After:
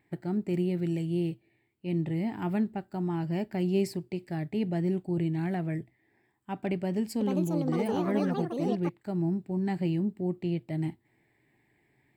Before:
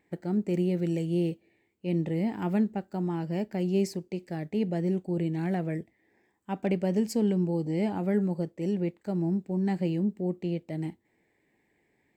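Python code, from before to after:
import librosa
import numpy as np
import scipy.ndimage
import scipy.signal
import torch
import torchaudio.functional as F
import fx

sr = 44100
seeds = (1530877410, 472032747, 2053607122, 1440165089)

y = fx.graphic_eq_31(x, sr, hz=(125, 200, 500, 6300), db=(11, -4, -10, -11))
y = fx.rider(y, sr, range_db=10, speed_s=2.0)
y = fx.echo_pitch(y, sr, ms=469, semitones=6, count=2, db_per_echo=-3.0, at=(6.74, 9.12))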